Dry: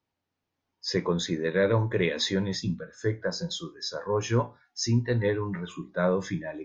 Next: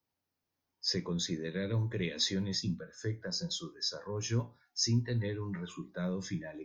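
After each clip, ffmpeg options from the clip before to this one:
ffmpeg -i in.wav -filter_complex "[0:a]acrossover=split=310|2400[link_01][link_02][link_03];[link_02]acompressor=threshold=-38dB:ratio=6[link_04];[link_03]aexciter=amount=2.4:drive=1.5:freq=4500[link_05];[link_01][link_04][link_05]amix=inputs=3:normalize=0,volume=-5dB" out.wav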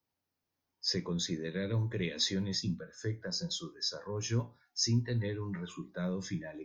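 ffmpeg -i in.wav -af anull out.wav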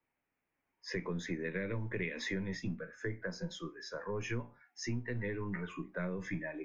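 ffmpeg -i in.wav -filter_complex "[0:a]acrossover=split=170[link_01][link_02];[link_01]aeval=exprs='max(val(0),0)':channel_layout=same[link_03];[link_02]highshelf=frequency=3100:width_type=q:width=3:gain=-11[link_04];[link_03][link_04]amix=inputs=2:normalize=0,acompressor=threshold=-35dB:ratio=6,volume=2dB" out.wav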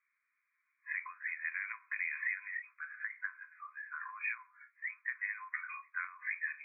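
ffmpeg -i in.wav -af "afftfilt=real='re*between(b*sr/4096,1000,2500)':imag='im*between(b*sr/4096,1000,2500)':win_size=4096:overlap=0.75,tiltshelf=frequency=1300:gain=-8.5,alimiter=level_in=6dB:limit=-24dB:level=0:latency=1:release=152,volume=-6dB,volume=5dB" out.wav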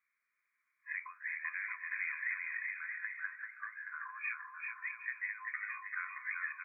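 ffmpeg -i in.wav -af "aecho=1:1:390|624|764.4|848.6|899.2:0.631|0.398|0.251|0.158|0.1,volume=-2dB" out.wav

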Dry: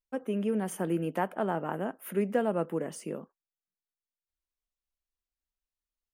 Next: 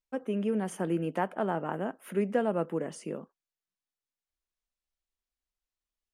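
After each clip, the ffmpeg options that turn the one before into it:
ffmpeg -i in.wav -af "lowpass=8700" out.wav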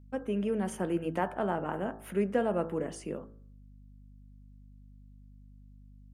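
ffmpeg -i in.wav -af "bandreject=frequency=54.97:width_type=h:width=4,bandreject=frequency=109.94:width_type=h:width=4,bandreject=frequency=164.91:width_type=h:width=4,bandreject=frequency=219.88:width_type=h:width=4,bandreject=frequency=274.85:width_type=h:width=4,bandreject=frequency=329.82:width_type=h:width=4,bandreject=frequency=384.79:width_type=h:width=4,bandreject=frequency=439.76:width_type=h:width=4,bandreject=frequency=494.73:width_type=h:width=4,bandreject=frequency=549.7:width_type=h:width=4,bandreject=frequency=604.67:width_type=h:width=4,bandreject=frequency=659.64:width_type=h:width=4,bandreject=frequency=714.61:width_type=h:width=4,bandreject=frequency=769.58:width_type=h:width=4,bandreject=frequency=824.55:width_type=h:width=4,bandreject=frequency=879.52:width_type=h:width=4,bandreject=frequency=934.49:width_type=h:width=4,bandreject=frequency=989.46:width_type=h:width=4,bandreject=frequency=1044.43:width_type=h:width=4,bandreject=frequency=1099.4:width_type=h:width=4,bandreject=frequency=1154.37:width_type=h:width=4,bandreject=frequency=1209.34:width_type=h:width=4,bandreject=frequency=1264.31:width_type=h:width=4,bandreject=frequency=1319.28:width_type=h:width=4,bandreject=frequency=1374.25:width_type=h:width=4,bandreject=frequency=1429.22:width_type=h:width=4,bandreject=frequency=1484.19:width_type=h:width=4,bandreject=frequency=1539.16:width_type=h:width=4,bandreject=frequency=1594.13:width_type=h:width=4,bandreject=frequency=1649.1:width_type=h:width=4,bandreject=frequency=1704.07:width_type=h:width=4,bandreject=frequency=1759.04:width_type=h:width=4,bandreject=frequency=1814.01:width_type=h:width=4,aeval=exprs='val(0)+0.00251*(sin(2*PI*50*n/s)+sin(2*PI*2*50*n/s)/2+sin(2*PI*3*50*n/s)/3+sin(2*PI*4*50*n/s)/4+sin(2*PI*5*50*n/s)/5)':channel_layout=same" out.wav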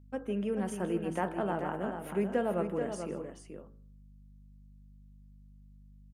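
ffmpeg -i in.wav -af "aecho=1:1:157|434:0.141|0.422,volume=-2dB" out.wav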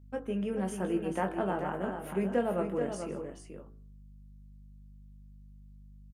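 ffmpeg -i in.wav -filter_complex "[0:a]asplit=2[link_01][link_02];[link_02]adelay=21,volume=-7dB[link_03];[link_01][link_03]amix=inputs=2:normalize=0" out.wav

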